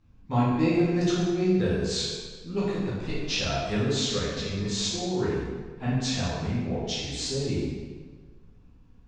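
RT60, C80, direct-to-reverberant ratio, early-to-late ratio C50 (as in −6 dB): 1.5 s, 1.0 dB, −9.0 dB, −1.5 dB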